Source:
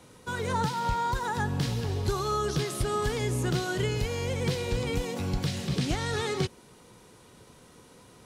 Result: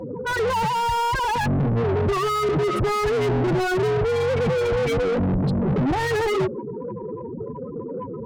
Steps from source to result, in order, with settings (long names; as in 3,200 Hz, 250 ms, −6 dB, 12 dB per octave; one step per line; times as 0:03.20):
spectral peaks only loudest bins 8
mid-hump overdrive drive 39 dB, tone 6,500 Hz, clips at −17.5 dBFS
tilt shelving filter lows +3.5 dB, about 1,100 Hz